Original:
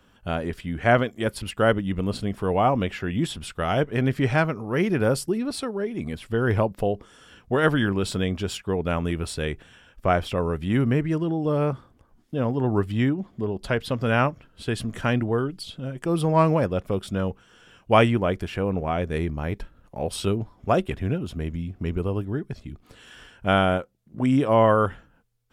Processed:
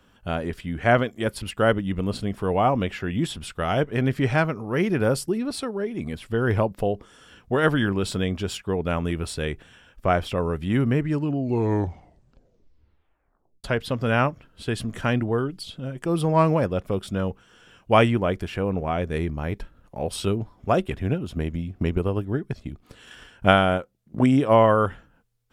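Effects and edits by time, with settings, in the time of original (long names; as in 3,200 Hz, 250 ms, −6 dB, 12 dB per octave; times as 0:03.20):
0:10.99: tape stop 2.65 s
0:21.04–0:24.68: transient designer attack +7 dB, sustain −1 dB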